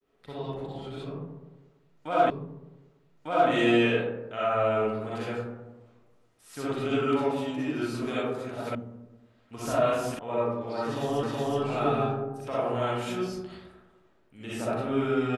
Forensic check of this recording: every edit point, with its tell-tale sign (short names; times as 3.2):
2.3 repeat of the last 1.2 s
8.75 sound cut off
10.19 sound cut off
11.23 repeat of the last 0.37 s